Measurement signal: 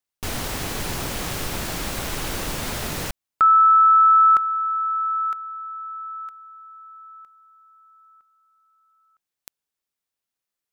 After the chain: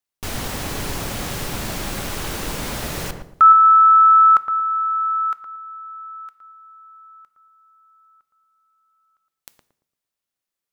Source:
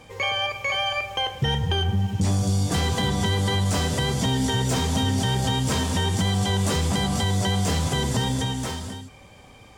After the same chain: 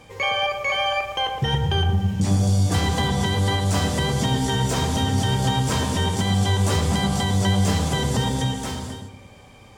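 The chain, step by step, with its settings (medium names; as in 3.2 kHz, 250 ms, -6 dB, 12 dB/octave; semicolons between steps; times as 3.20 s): dynamic bell 980 Hz, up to +6 dB, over -30 dBFS, Q 0.92; on a send: filtered feedback delay 114 ms, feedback 36%, low-pass 910 Hz, level -4 dB; on the sum: two-slope reverb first 0.6 s, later 3.2 s, from -27 dB, DRR 14.5 dB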